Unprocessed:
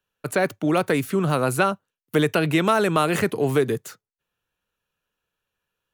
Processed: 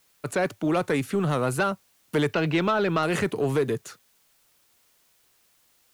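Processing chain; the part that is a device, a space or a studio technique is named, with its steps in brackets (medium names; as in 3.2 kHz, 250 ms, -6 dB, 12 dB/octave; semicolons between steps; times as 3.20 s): 2.28–3.03 s: low-pass 5 kHz 24 dB/octave; compact cassette (saturation -14 dBFS, distortion -15 dB; low-pass 9.8 kHz 12 dB/octave; wow and flutter; white noise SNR 37 dB); trim -1.5 dB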